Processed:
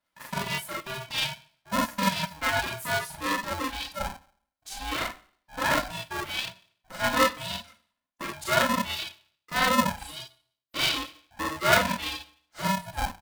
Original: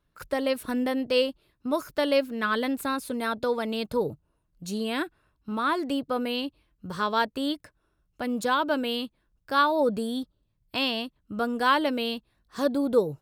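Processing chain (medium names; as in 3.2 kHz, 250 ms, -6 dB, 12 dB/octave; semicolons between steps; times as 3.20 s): high-pass 470 Hz 24 dB/octave; comb 3 ms, depth 93%; Schroeder reverb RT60 0.54 s, combs from 26 ms, DRR -5 dB; reverb removal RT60 1.3 s; polarity switched at an audio rate 390 Hz; trim -6 dB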